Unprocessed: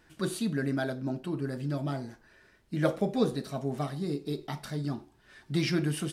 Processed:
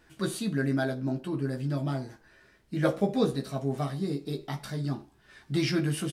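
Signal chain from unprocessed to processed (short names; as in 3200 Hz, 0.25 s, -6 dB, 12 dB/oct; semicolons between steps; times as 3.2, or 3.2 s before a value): doubler 15 ms -5 dB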